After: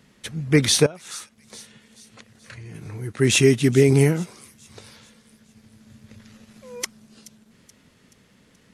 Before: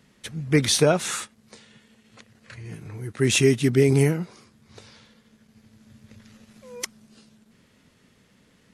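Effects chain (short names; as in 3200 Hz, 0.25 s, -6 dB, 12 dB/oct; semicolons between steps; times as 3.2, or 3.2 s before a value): 0.86–2.75 compressor 10:1, threshold -38 dBFS, peak gain reduction 22.5 dB; thin delay 0.428 s, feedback 48%, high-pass 4800 Hz, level -15 dB; gain +2.5 dB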